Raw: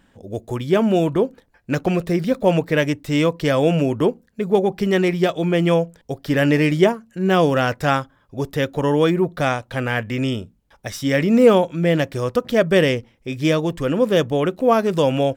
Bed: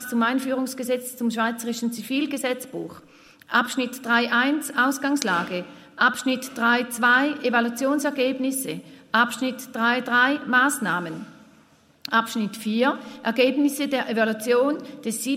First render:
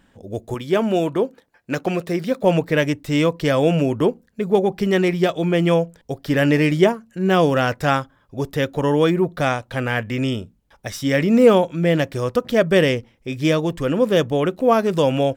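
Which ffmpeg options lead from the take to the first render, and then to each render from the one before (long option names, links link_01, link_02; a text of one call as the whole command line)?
ffmpeg -i in.wav -filter_complex "[0:a]asettb=1/sr,asplit=3[link_01][link_02][link_03];[link_01]atrim=end=0.544[link_04];[link_02]atrim=start=0.54:end=2.44,asetpts=PTS-STARTPTS,afade=type=in:duration=0.004:curve=qsin,afade=type=out:start_time=1.896:duration=0.004:curve=qsin,highpass=frequency=250:poles=1[link_05];[link_03]atrim=start=2.436[link_06];[link_04][link_05]acrossfade=duration=0.004:curve1=hsin:curve2=qsin[link_07];[link_07][link_06]acrossfade=duration=0.004:curve1=qsin:curve2=hsin" out.wav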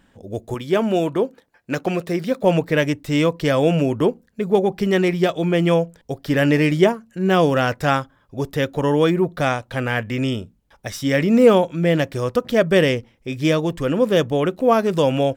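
ffmpeg -i in.wav -af anull out.wav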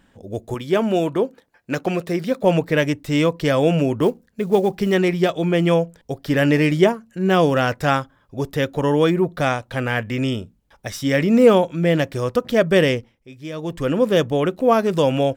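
ffmpeg -i in.wav -filter_complex "[0:a]asettb=1/sr,asplit=3[link_01][link_02][link_03];[link_01]atrim=end=4.024[link_04];[link_02]atrim=start=4.02:end=4.95,asetpts=PTS-STARTPTS,afade=type=in:duration=0.004:curve=qsin,afade=type=out:start_time=0.926:duration=0.004:curve=qsin,acrusher=bits=8:mode=log:mix=0:aa=0.000001[link_05];[link_03]atrim=start=4.946[link_06];[link_04][link_05]acrossfade=duration=0.004:curve1=hsin:curve2=qsin[link_07];[link_07][link_06]acrossfade=duration=0.004:curve1=qsin:curve2=hsin,asplit=3[link_08][link_09][link_10];[link_08]atrim=end=13.27,asetpts=PTS-STARTPTS,afade=type=out:start_time=12.95:duration=0.32:silence=0.199526[link_11];[link_09]atrim=start=13.27:end=13.52,asetpts=PTS-STARTPTS,volume=-14dB[link_12];[link_10]atrim=start=13.52,asetpts=PTS-STARTPTS,afade=type=in:duration=0.32:silence=0.199526[link_13];[link_11][link_12][link_13]concat=n=3:v=0:a=1" out.wav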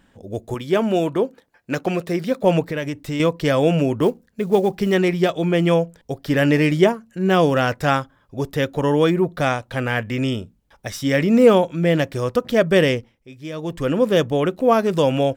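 ffmpeg -i in.wav -filter_complex "[0:a]asettb=1/sr,asplit=3[link_01][link_02][link_03];[link_01]atrim=end=2.644[link_04];[link_02]atrim=start=2.64:end=3.2,asetpts=PTS-STARTPTS,afade=type=in:duration=0.004:curve=qsin,afade=type=out:start_time=0.556:duration=0.004:curve=qsin,acompressor=threshold=-23dB:ratio=3:attack=3.2:release=140:knee=1:detection=peak[link_05];[link_03]atrim=start=3.196[link_06];[link_04][link_05]acrossfade=duration=0.004:curve1=hsin:curve2=qsin[link_07];[link_07][link_06]acrossfade=duration=0.004:curve1=qsin:curve2=hsin" out.wav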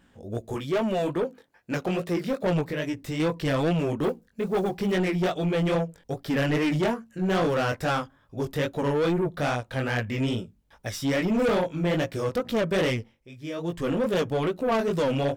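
ffmpeg -i in.wav -af "flanger=delay=16.5:depth=6.2:speed=2.4,asoftclip=type=tanh:threshold=-20dB" out.wav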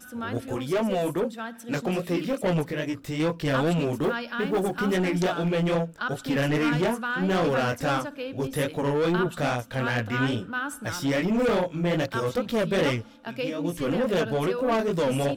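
ffmpeg -i in.wav -i bed.wav -filter_complex "[1:a]volume=-12dB[link_01];[0:a][link_01]amix=inputs=2:normalize=0" out.wav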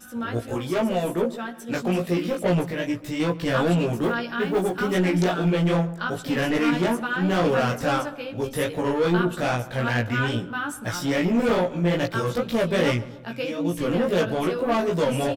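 ffmpeg -i in.wav -filter_complex "[0:a]asplit=2[link_01][link_02];[link_02]adelay=17,volume=-2.5dB[link_03];[link_01][link_03]amix=inputs=2:normalize=0,asplit=2[link_04][link_05];[link_05]adelay=136,lowpass=frequency=1600:poles=1,volume=-16.5dB,asplit=2[link_06][link_07];[link_07]adelay=136,lowpass=frequency=1600:poles=1,volume=0.53,asplit=2[link_08][link_09];[link_09]adelay=136,lowpass=frequency=1600:poles=1,volume=0.53,asplit=2[link_10][link_11];[link_11]adelay=136,lowpass=frequency=1600:poles=1,volume=0.53,asplit=2[link_12][link_13];[link_13]adelay=136,lowpass=frequency=1600:poles=1,volume=0.53[link_14];[link_04][link_06][link_08][link_10][link_12][link_14]amix=inputs=6:normalize=0" out.wav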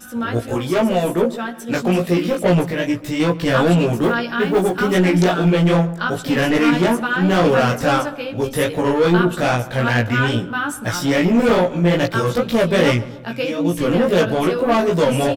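ffmpeg -i in.wav -af "volume=6.5dB" out.wav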